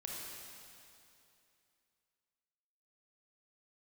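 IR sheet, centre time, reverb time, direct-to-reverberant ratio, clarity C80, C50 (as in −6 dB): 148 ms, 2.7 s, −3.5 dB, 0.0 dB, −2.0 dB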